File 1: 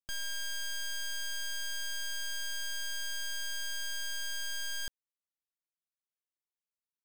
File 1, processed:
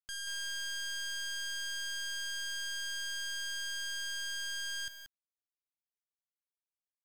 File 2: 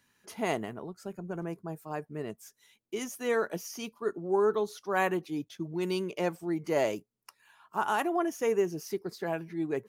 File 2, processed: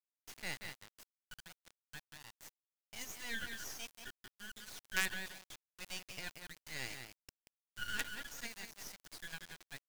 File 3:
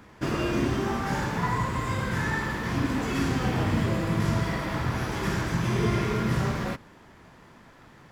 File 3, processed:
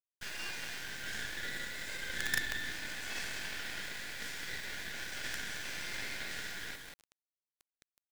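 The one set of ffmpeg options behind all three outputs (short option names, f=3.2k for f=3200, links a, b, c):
-filter_complex "[0:a]afftfilt=real='re*between(b*sr/4096,1400,8900)':imag='im*between(b*sr/4096,1400,8900)':win_size=4096:overlap=0.75,asplit=2[a][b];[b]adelay=182,lowpass=f=2.6k:p=1,volume=-5dB,asplit=2[c][d];[d]adelay=182,lowpass=f=2.6k:p=1,volume=0.21,asplit=2[e][f];[f]adelay=182,lowpass=f=2.6k:p=1,volume=0.21[g];[a][c][e][g]amix=inputs=4:normalize=0,acrusher=bits=5:dc=4:mix=0:aa=0.000001"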